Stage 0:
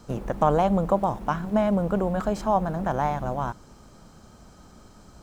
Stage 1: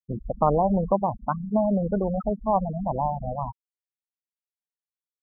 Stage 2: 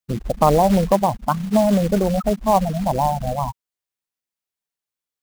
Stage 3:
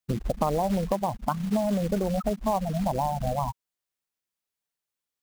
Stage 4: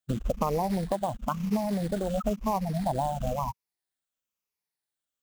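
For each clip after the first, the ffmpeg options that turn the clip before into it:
-af "afftfilt=real='re*gte(hypot(re,im),0.141)':imag='im*gte(hypot(re,im),0.141)':win_size=1024:overlap=0.75"
-af "acontrast=69,acrusher=bits=4:mode=log:mix=0:aa=0.000001"
-af "acompressor=threshold=-24dB:ratio=4"
-af "afftfilt=real='re*pow(10,7/40*sin(2*PI*(0.82*log(max(b,1)*sr/1024/100)/log(2)-(-1)*(pts-256)/sr)))':imag='im*pow(10,7/40*sin(2*PI*(0.82*log(max(b,1)*sr/1024/100)/log(2)-(-1)*(pts-256)/sr)))':win_size=1024:overlap=0.75,volume=-2.5dB"

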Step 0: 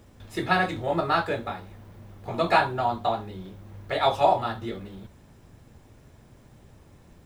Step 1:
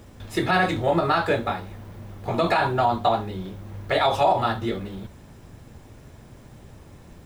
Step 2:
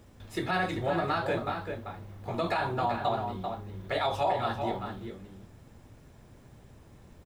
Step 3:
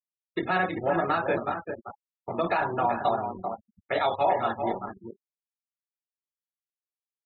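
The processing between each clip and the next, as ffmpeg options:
-af "alimiter=limit=-17dB:level=0:latency=1:release=64,volume=6.5dB"
-filter_complex "[0:a]asplit=2[a][b];[b]adelay=390.7,volume=-6dB,highshelf=f=4k:g=-8.79[c];[a][c]amix=inputs=2:normalize=0,volume=-8.5dB"
-filter_complex "[0:a]acrossover=split=160 3800:gain=0.224 1 0.178[a][b][c];[a][b][c]amix=inputs=3:normalize=0,aeval=exprs='sgn(val(0))*max(abs(val(0))-0.00562,0)':c=same,afftfilt=real='re*gte(hypot(re,im),0.0112)':imag='im*gte(hypot(re,im),0.0112)':win_size=1024:overlap=0.75,volume=5dB"

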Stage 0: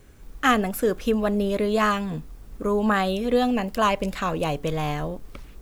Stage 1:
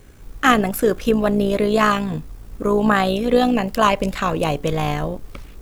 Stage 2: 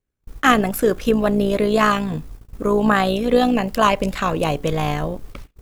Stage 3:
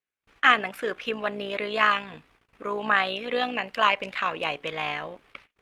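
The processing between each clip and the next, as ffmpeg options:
-af "tremolo=f=58:d=0.462,volume=7dB"
-af "agate=range=-35dB:threshold=-34dB:ratio=16:detection=peak"
-af "bandpass=f=2.5k:t=q:w=1.6:csg=0,highshelf=f=2.5k:g=-9.5,volume=7dB" -ar 48000 -c:a libopus -b:a 48k

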